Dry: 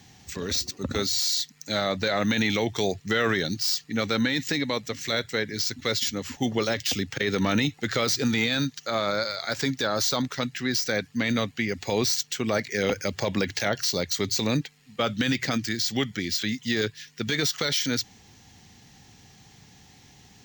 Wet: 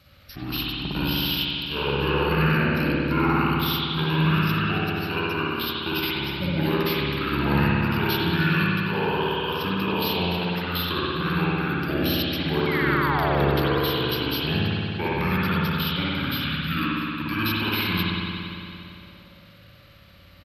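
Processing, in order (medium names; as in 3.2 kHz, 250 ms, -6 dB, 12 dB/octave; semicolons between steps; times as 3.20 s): pitch shift -6 st; painted sound fall, 12.66–13.59 s, 290–2300 Hz -28 dBFS; spring tank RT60 2.8 s, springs 57 ms, chirp 45 ms, DRR -7 dB; trim -4.5 dB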